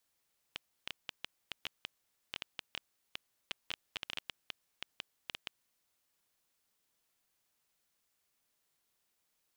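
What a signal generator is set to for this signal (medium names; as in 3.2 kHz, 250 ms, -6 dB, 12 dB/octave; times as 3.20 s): random clicks 6.7 per s -20.5 dBFS 5.19 s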